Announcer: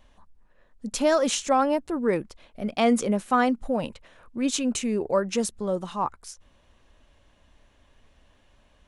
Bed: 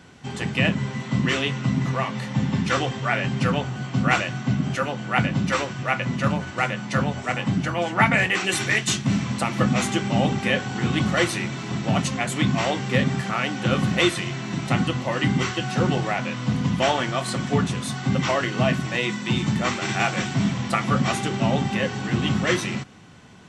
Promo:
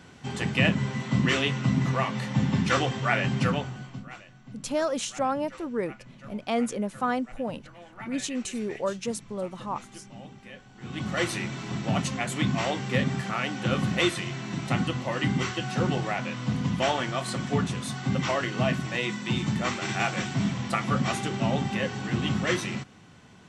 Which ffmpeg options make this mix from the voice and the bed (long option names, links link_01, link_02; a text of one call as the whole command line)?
ffmpeg -i stem1.wav -i stem2.wav -filter_complex "[0:a]adelay=3700,volume=-5.5dB[link_01];[1:a]volume=17.5dB,afade=type=out:start_time=3.34:duration=0.72:silence=0.0794328,afade=type=in:start_time=10.77:duration=0.55:silence=0.112202[link_02];[link_01][link_02]amix=inputs=2:normalize=0" out.wav